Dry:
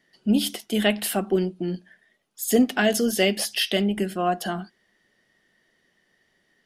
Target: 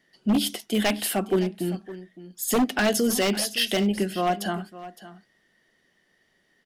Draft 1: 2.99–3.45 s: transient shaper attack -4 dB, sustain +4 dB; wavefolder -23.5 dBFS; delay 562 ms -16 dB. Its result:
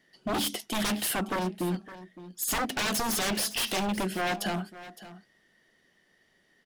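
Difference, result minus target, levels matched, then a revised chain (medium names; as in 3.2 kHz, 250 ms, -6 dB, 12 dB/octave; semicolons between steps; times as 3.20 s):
wavefolder: distortion +16 dB
2.99–3.45 s: transient shaper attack -4 dB, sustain +4 dB; wavefolder -15 dBFS; delay 562 ms -16 dB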